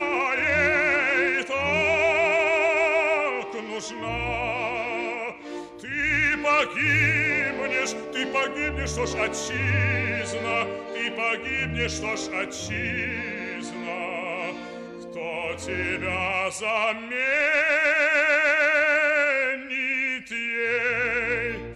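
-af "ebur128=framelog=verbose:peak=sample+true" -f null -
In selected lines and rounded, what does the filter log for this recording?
Integrated loudness:
  I:         -23.4 LUFS
  Threshold: -33.6 LUFS
Loudness range:
  LRA:         8.3 LU
  Threshold: -43.8 LUFS
  LRA low:   -28.8 LUFS
  LRA high:  -20.5 LUFS
Sample peak:
  Peak:      -10.5 dBFS
True peak:
  Peak:      -10.5 dBFS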